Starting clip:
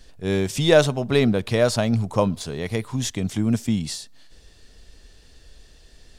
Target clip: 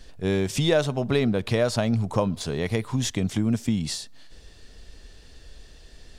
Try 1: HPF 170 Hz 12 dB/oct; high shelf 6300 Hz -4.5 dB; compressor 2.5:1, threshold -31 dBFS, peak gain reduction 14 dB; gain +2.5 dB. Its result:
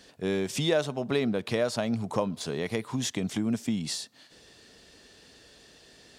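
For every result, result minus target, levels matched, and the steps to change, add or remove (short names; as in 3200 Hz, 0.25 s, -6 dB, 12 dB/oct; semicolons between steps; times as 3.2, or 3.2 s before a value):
125 Hz band -4.5 dB; compressor: peak gain reduction +4 dB
remove: HPF 170 Hz 12 dB/oct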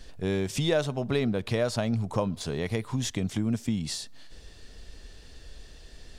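compressor: peak gain reduction +4 dB
change: compressor 2.5:1, threshold -24 dBFS, peak gain reduction 9.5 dB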